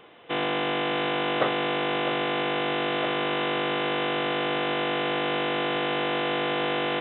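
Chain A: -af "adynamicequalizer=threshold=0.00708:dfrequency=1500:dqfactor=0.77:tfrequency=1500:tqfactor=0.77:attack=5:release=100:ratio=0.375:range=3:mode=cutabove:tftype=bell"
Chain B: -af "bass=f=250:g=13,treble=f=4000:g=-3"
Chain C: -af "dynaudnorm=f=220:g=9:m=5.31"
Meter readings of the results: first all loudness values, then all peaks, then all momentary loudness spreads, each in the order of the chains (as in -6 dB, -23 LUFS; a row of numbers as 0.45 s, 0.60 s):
-28.5 LUFS, -24.5 LUFS, -15.0 LUFS; -13.5 dBFS, -9.0 dBFS, -2.0 dBFS; 1 LU, 1 LU, 10 LU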